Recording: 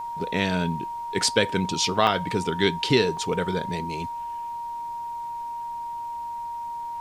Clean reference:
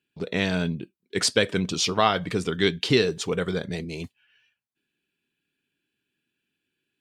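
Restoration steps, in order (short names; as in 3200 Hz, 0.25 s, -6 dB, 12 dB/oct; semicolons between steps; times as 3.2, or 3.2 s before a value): notch 940 Hz, Q 30; interpolate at 2.07/3.17, 2.8 ms; expander -25 dBFS, range -21 dB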